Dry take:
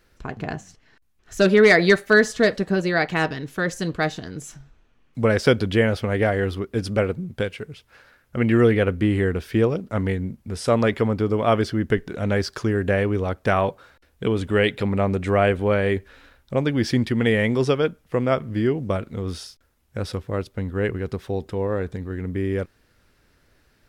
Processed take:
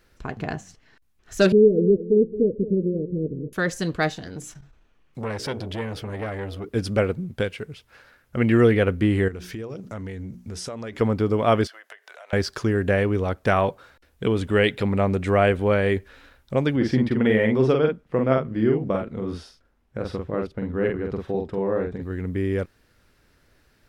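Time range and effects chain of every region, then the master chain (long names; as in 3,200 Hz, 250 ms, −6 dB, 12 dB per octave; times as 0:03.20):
0:01.52–0:03.53: Butterworth low-pass 520 Hz 96 dB per octave + repeating echo 219 ms, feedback 30%, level −14 dB
0:04.13–0:06.69: mains-hum notches 60/120/180/240/300/360/420/480 Hz + downward compressor 2 to 1, threshold −26 dBFS + saturating transformer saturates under 720 Hz
0:09.28–0:11.01: parametric band 6,200 Hz +7.5 dB 0.58 octaves + mains-hum notches 60/120/180/240/300/360 Hz + downward compressor 8 to 1, threshold −30 dBFS
0:11.67–0:12.33: Chebyshev high-pass filter 620 Hz, order 4 + downward compressor 8 to 1, threshold −40 dBFS
0:16.76–0:22.02: low-pass filter 1,500 Hz 6 dB per octave + parametric band 99 Hz −14.5 dB 0.21 octaves + double-tracking delay 46 ms −3.5 dB
whole clip: no processing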